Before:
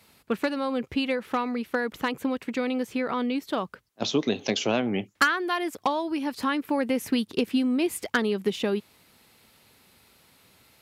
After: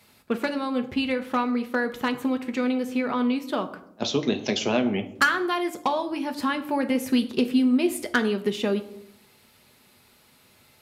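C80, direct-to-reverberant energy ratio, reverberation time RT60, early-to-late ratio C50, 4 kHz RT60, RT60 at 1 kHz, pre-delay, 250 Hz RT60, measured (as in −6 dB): 16.5 dB, 6.0 dB, 0.75 s, 14.0 dB, 0.45 s, 0.65 s, 5 ms, 0.95 s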